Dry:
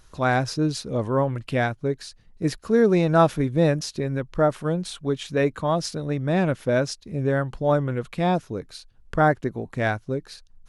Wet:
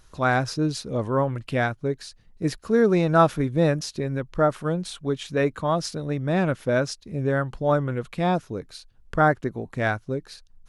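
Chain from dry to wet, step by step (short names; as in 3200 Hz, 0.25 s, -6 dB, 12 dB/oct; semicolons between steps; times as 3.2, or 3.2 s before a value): dynamic EQ 1300 Hz, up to +4 dB, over -37 dBFS, Q 2.7; gain -1 dB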